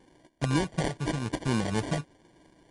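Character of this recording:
a buzz of ramps at a fixed pitch in blocks of 8 samples
phaser sweep stages 12, 4 Hz, lowest notch 390–1,600 Hz
aliases and images of a low sample rate 1,300 Hz, jitter 0%
MP3

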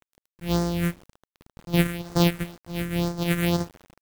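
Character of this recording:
a buzz of ramps at a fixed pitch in blocks of 256 samples
phaser sweep stages 4, 2 Hz, lowest notch 800–2,700 Hz
a quantiser's noise floor 8 bits, dither none
amplitude modulation by smooth noise

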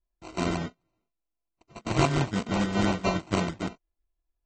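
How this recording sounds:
a buzz of ramps at a fixed pitch in blocks of 64 samples
phaser sweep stages 12, 3 Hz, lowest notch 530–1,300 Hz
aliases and images of a low sample rate 1,700 Hz, jitter 0%
AAC

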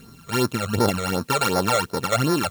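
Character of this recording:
a buzz of ramps at a fixed pitch in blocks of 32 samples
phaser sweep stages 12, 2.7 Hz, lowest notch 270–2,900 Hz
a quantiser's noise floor 10 bits, dither triangular

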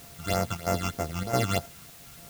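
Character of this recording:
a buzz of ramps at a fixed pitch in blocks of 64 samples
phaser sweep stages 8, 3.2 Hz, lowest notch 520–3,800 Hz
chopped level 1.5 Hz, depth 65%, duty 85%
a quantiser's noise floor 8 bits, dither triangular

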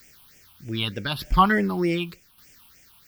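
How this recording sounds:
a quantiser's noise floor 10 bits, dither triangular
phaser sweep stages 6, 3.3 Hz, lowest notch 480–1,100 Hz
tremolo saw down 0.84 Hz, depth 55%

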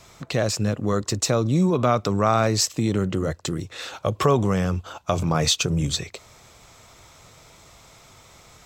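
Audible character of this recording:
background noise floor −51 dBFS
spectral slope −5.0 dB per octave

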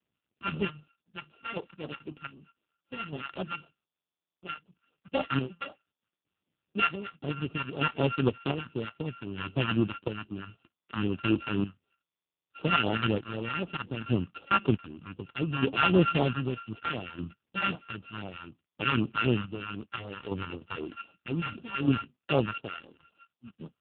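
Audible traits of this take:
a buzz of ramps at a fixed pitch in blocks of 32 samples
phaser sweep stages 2, 3.9 Hz, lowest notch 400–1,700 Hz
chopped level 0.64 Hz, depth 60%, duty 45%
AMR narrowband

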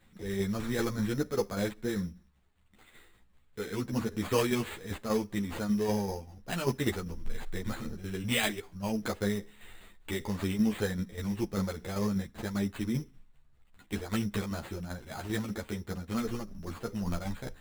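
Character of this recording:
tremolo saw down 5.1 Hz, depth 55%
aliases and images of a low sample rate 5,600 Hz, jitter 0%
a shimmering, thickened sound

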